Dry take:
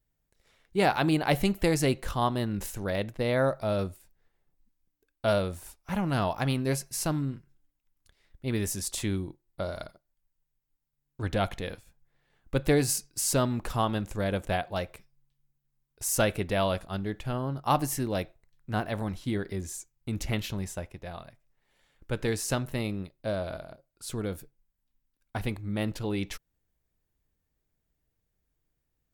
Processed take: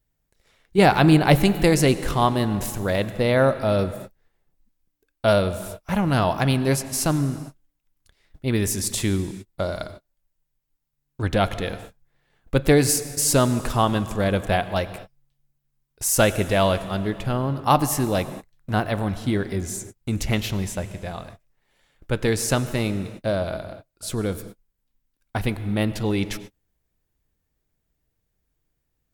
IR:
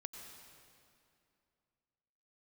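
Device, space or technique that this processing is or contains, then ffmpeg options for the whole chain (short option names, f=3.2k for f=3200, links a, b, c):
keyed gated reverb: -filter_complex "[0:a]asettb=1/sr,asplit=3[a][b][c];[a]atrim=end=0.784[d];[b]atrim=start=0.78:end=1.4,asetpts=PTS-STARTPTS,afade=t=in:d=0.004:c=qsin,afade=t=out:st=0.616:d=0.004:c=qsin,lowshelf=f=170:g=9[e];[c]atrim=start=1.396[f];[d][e]acrossfade=d=0.004:c1=hsin:c2=qsin[g];[g][f]acrossfade=d=0.004:c1=qsin:c2=hsin,asplit=3[h][i][j];[1:a]atrim=start_sample=2205[k];[i][k]afir=irnorm=-1:irlink=0[l];[j]apad=whole_len=1285032[m];[l][m]sidechaingate=range=-49dB:threshold=-51dB:ratio=16:detection=peak,volume=-1.5dB[n];[h][n]amix=inputs=2:normalize=0,volume=4dB"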